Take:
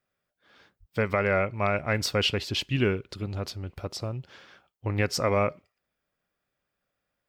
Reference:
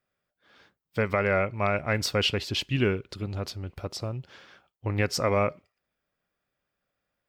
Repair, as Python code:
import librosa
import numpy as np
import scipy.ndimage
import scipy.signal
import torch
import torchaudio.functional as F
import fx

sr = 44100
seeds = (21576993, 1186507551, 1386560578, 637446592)

y = fx.highpass(x, sr, hz=140.0, slope=24, at=(0.79, 0.91), fade=0.02)